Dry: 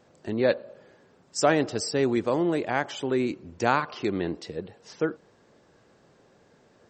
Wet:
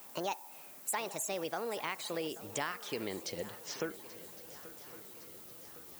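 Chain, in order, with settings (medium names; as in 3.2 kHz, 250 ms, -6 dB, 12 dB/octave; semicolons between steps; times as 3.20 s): gliding tape speed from 160% -> 70%; tilt shelf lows -4.5 dB, about 1.2 kHz; compression 4:1, threshold -37 dBFS, peak gain reduction 17 dB; added noise violet -54 dBFS; shuffle delay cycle 1111 ms, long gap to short 3:1, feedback 56%, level -17 dB; trim +1 dB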